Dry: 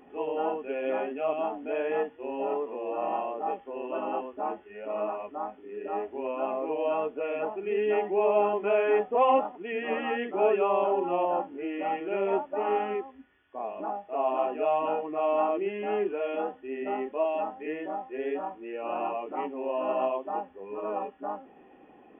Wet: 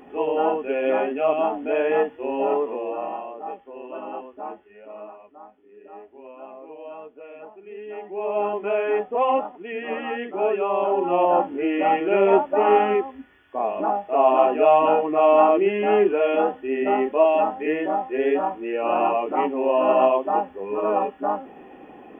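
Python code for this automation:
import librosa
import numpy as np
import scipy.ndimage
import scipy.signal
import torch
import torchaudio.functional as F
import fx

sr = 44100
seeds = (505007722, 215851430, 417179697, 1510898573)

y = fx.gain(x, sr, db=fx.line((2.71, 8.0), (3.19, -2.0), (4.53, -2.0), (5.2, -10.0), (7.89, -10.0), (8.46, 1.5), (10.65, 1.5), (11.45, 10.5)))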